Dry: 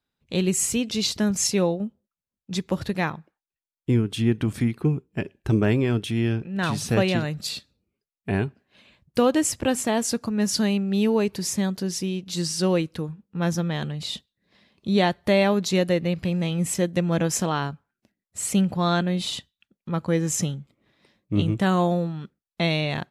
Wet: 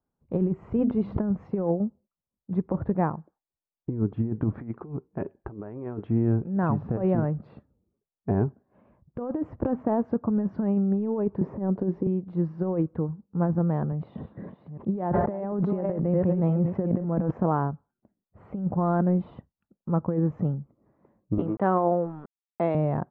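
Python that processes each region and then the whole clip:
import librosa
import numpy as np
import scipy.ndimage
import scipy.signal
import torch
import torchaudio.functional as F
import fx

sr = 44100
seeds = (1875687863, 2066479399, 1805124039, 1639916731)

y = fx.chain(x, sr, fx.hum_notches(base_hz=50, count=6),
    fx.sustainer(db_per_s=30.0), at=(0.56, 1.21))
y = fx.chain(y, sr, fx.over_compress(threshold_db=-26.0, ratio=-0.5),
    fx.low_shelf(hz=410.0, db=-11.5), at=(4.53, 6.07))
y = fx.chain(y, sr, fx.peak_eq(hz=420.0, db=7.5, octaves=1.8),
    fx.band_squash(depth_pct=40), at=(11.41, 12.07))
y = fx.chain(y, sr, fx.reverse_delay(ms=428, wet_db=-9.0),
    fx.highpass(hz=98.0, slope=12),
    fx.sustainer(db_per_s=26.0), at=(13.92, 17.31))
y = fx.chain(y, sr, fx.bandpass_edges(low_hz=290.0, high_hz=7000.0),
    fx.high_shelf(hz=2000.0, db=9.5),
    fx.sample_gate(floor_db=-42.5), at=(21.38, 22.75))
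y = scipy.signal.sosfilt(scipy.signal.butter(4, 1100.0, 'lowpass', fs=sr, output='sos'), y)
y = fx.over_compress(y, sr, threshold_db=-23.0, ratio=-0.5)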